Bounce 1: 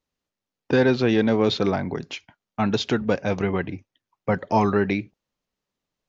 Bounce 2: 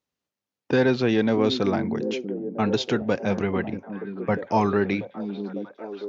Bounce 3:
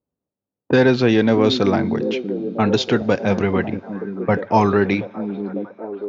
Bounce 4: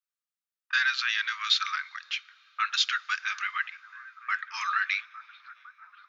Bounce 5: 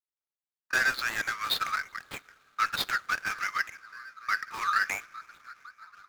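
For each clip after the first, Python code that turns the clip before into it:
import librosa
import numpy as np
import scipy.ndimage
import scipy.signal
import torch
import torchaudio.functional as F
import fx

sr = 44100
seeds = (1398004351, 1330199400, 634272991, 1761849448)

y1 = scipy.signal.sosfilt(scipy.signal.butter(2, 85.0, 'highpass', fs=sr, output='sos'), x)
y1 = fx.echo_stepped(y1, sr, ms=639, hz=250.0, octaves=0.7, feedback_pct=70, wet_db=-5.5)
y1 = F.gain(torch.from_numpy(y1), -1.5).numpy()
y2 = fx.env_lowpass(y1, sr, base_hz=590.0, full_db=-18.5)
y2 = fx.rev_double_slope(y2, sr, seeds[0], early_s=0.27, late_s=4.1, knee_db=-18, drr_db=18.5)
y2 = F.gain(torch.from_numpy(y2), 6.0).numpy()
y3 = scipy.signal.sosfilt(scipy.signal.cheby1(6, 1.0, 1200.0, 'highpass', fs=sr, output='sos'), y2)
y4 = scipy.ndimage.median_filter(y3, 15, mode='constant')
y4 = F.gain(torch.from_numpy(y4), 3.0).numpy()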